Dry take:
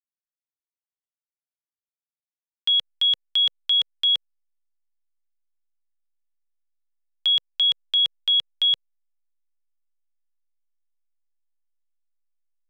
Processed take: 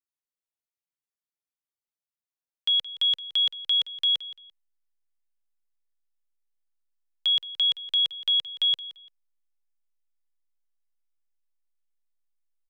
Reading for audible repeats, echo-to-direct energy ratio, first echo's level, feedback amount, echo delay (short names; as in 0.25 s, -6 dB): 2, -16.0 dB, -16.5 dB, 25%, 0.171 s